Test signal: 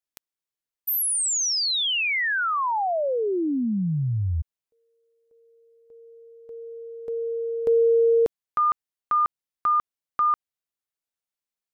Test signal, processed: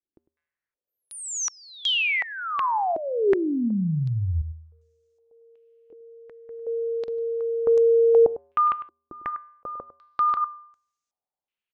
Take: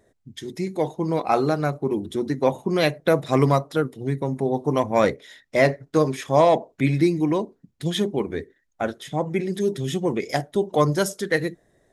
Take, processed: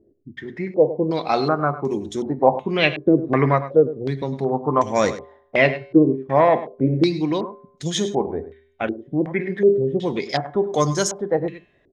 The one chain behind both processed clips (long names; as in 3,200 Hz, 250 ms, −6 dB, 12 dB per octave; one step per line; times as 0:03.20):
tuned comb filter 80 Hz, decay 0.74 s, harmonics odd, mix 50%
single-tap delay 102 ms −14 dB
low-pass on a step sequencer 2.7 Hz 340–6,500 Hz
level +5 dB